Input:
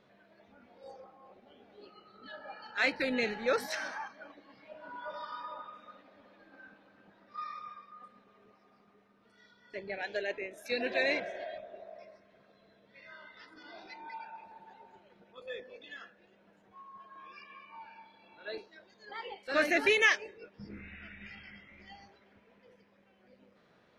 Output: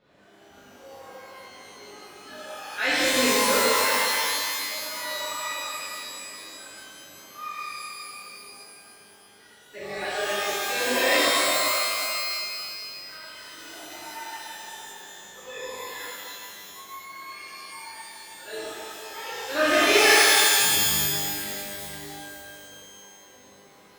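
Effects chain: 21.08–21.59 s: resonant low shelf 160 Hz -13 dB, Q 3; pitch-shifted reverb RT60 2.1 s, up +12 st, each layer -2 dB, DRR -11 dB; trim -3.5 dB

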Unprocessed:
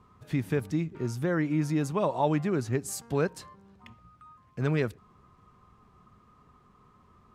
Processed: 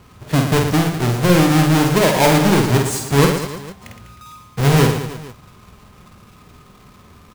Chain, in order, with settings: square wave that keeps the level; reverse bouncing-ball echo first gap 50 ms, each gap 1.3×, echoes 5; trim +7.5 dB

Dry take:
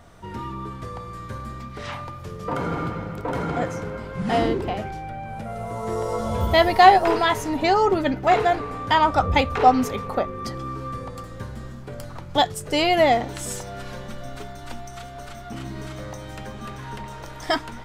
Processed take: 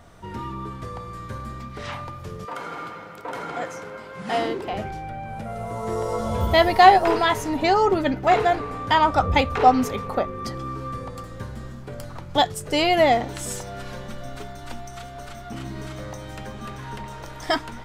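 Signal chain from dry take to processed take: 2.44–4.72 s: high-pass 1.4 kHz -> 430 Hz 6 dB/octave

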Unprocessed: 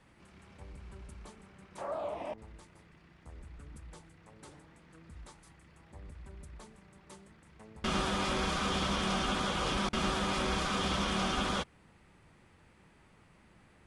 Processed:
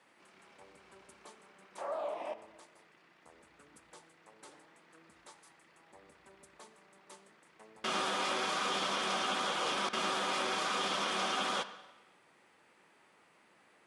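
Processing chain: high-pass 390 Hz 12 dB/octave; reverberation RT60 1.1 s, pre-delay 41 ms, DRR 12 dB

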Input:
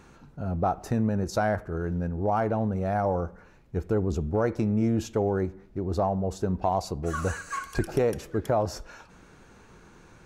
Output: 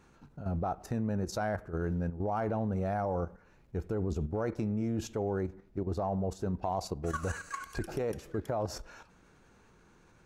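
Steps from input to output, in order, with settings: level held to a coarse grid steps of 10 dB; trim -1.5 dB

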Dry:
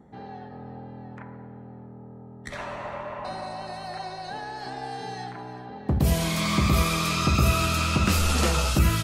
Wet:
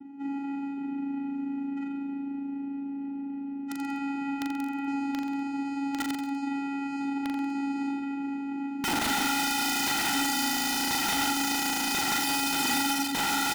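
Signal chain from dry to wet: Bessel low-pass 4.5 kHz, order 2; in parallel at -2 dB: compression 8:1, threshold -36 dBFS, peak gain reduction 20 dB; on the sum: time stretch by phase-locked vocoder 1.5×; vocoder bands 4, square 278 Hz; integer overflow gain 26 dB; on a send: reverse bouncing-ball echo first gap 40 ms, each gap 1.1×, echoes 5; on the sum: trim +1.5 dB

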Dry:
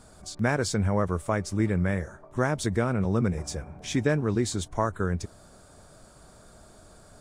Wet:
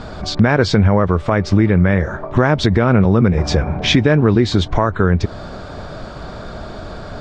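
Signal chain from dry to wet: low-pass 4.3 kHz 24 dB/octave; compression 6:1, threshold -31 dBFS, peak gain reduction 11.5 dB; loudness maximiser +23.5 dB; trim -1 dB

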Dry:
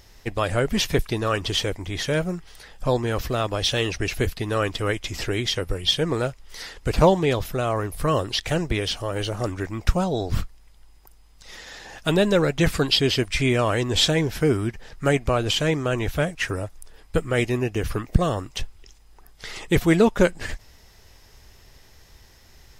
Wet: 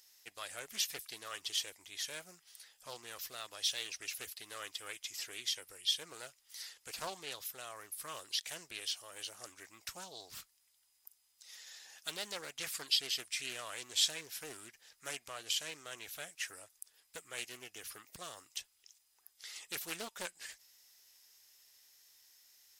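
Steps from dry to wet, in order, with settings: differentiator; loudspeaker Doppler distortion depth 0.63 ms; trim -5 dB

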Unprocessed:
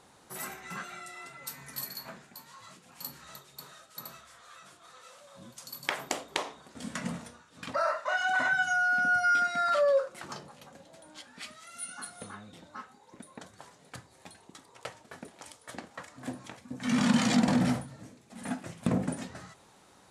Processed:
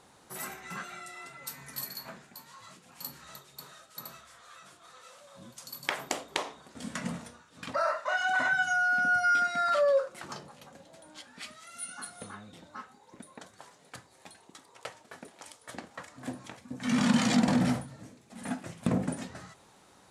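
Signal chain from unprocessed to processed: 13.34–15.62 s: bass shelf 200 Hz -7.5 dB

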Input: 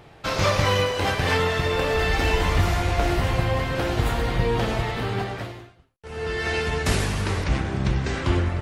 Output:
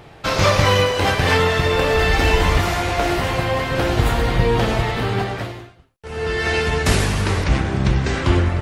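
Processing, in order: 2.58–3.72 s: bass shelf 130 Hz -10.5 dB; trim +5.5 dB

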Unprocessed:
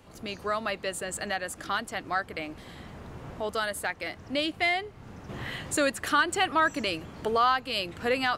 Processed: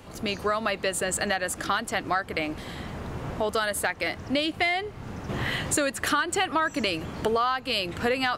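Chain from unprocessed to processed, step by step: compression 6:1, threshold -30 dBFS, peak gain reduction 10.5 dB; trim +8 dB

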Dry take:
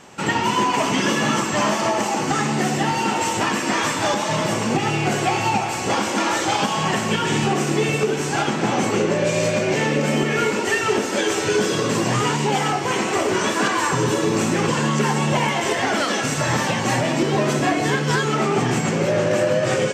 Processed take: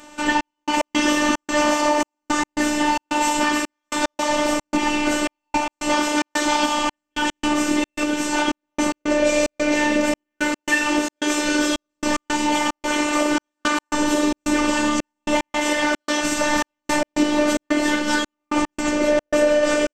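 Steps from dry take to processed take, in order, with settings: robot voice 298 Hz; trance gate "xxx..x.xxx.x" 111 bpm -60 dB; trim +3.5 dB

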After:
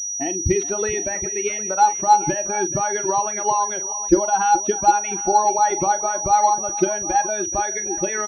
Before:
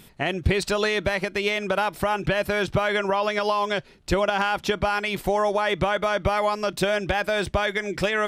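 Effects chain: expander on every frequency bin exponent 2; small resonant body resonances 330/830 Hz, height 17 dB, ringing for 55 ms; on a send: multi-tap echo 42/427/760 ms -13.5/-16/-16.5 dB; on the sum: class-D stage that switches slowly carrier 5.8 kHz

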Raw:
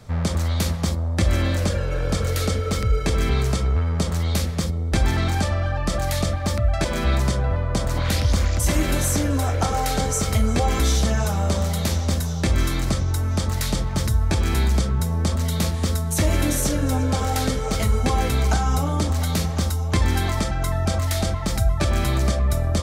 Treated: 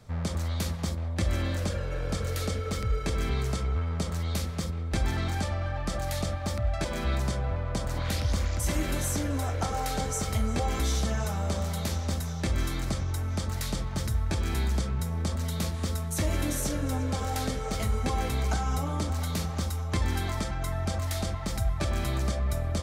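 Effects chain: feedback echo behind a band-pass 188 ms, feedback 82%, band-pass 1.4 kHz, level -13.5 dB; trim -8 dB

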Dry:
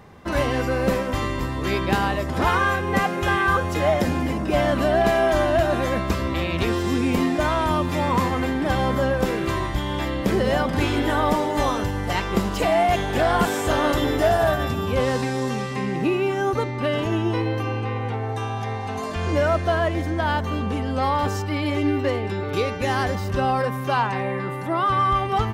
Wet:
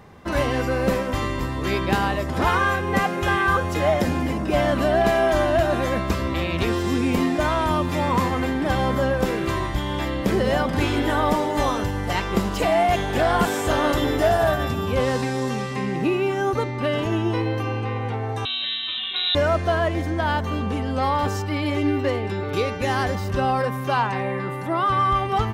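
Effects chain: 18.45–19.35 s: frequency inversion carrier 3.9 kHz

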